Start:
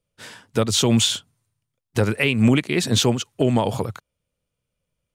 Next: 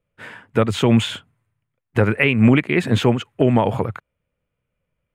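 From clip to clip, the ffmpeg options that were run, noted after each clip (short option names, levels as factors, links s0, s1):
-af "highshelf=f=3200:t=q:w=1.5:g=-13.5,bandreject=f=5800:w=13,volume=1.41"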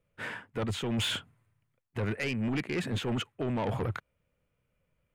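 -af "areverse,acompressor=threshold=0.0708:ratio=10,areverse,asoftclip=type=tanh:threshold=0.0501"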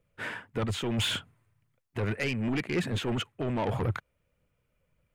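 -af "aphaser=in_gain=1:out_gain=1:delay=3.4:decay=0.26:speed=1.8:type=triangular,volume=1.19"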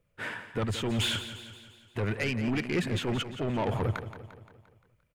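-af "aecho=1:1:174|348|522|696|870|1044:0.251|0.133|0.0706|0.0374|0.0198|0.0105"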